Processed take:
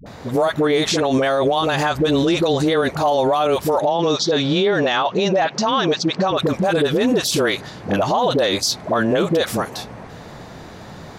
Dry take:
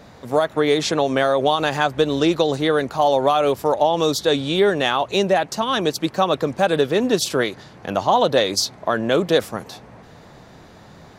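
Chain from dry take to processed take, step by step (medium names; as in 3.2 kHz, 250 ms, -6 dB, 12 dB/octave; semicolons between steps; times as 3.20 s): 3.79–6.31 s: elliptic band-pass 140–5900 Hz, stop band 40 dB; phase dispersion highs, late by 63 ms, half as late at 460 Hz; peak limiter -17.5 dBFS, peak gain reduction 12.5 dB; trim +7.5 dB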